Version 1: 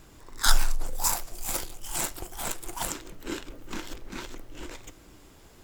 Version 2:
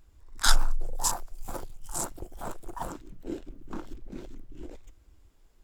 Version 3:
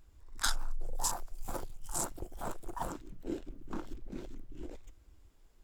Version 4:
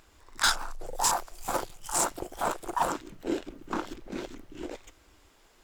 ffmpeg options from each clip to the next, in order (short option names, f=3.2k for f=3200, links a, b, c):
-af "afwtdn=0.0158"
-af "acompressor=threshold=-25dB:ratio=8,volume=-2dB"
-filter_complex "[0:a]asplit=2[a][b];[b]highpass=f=720:p=1,volume=21dB,asoftclip=type=tanh:threshold=-11dB[c];[a][c]amix=inputs=2:normalize=0,lowpass=f=5.8k:p=1,volume=-6dB"